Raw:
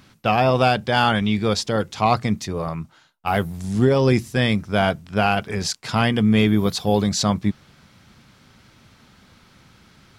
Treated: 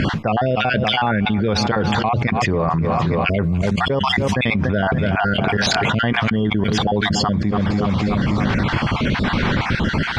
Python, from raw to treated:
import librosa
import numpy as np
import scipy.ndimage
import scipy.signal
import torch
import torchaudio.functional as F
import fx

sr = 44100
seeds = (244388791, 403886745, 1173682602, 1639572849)

p1 = fx.spec_dropout(x, sr, seeds[0], share_pct=39)
p2 = scipy.signal.sosfilt(scipy.signal.butter(2, 2400.0, 'lowpass', fs=sr, output='sos'), p1)
p3 = fx.notch(p2, sr, hz=1300.0, q=15.0)
p4 = p3 + fx.echo_feedback(p3, sr, ms=287, feedback_pct=54, wet_db=-20.5, dry=0)
p5 = fx.env_flatten(p4, sr, amount_pct=100)
y = p5 * 10.0 ** (-3.0 / 20.0)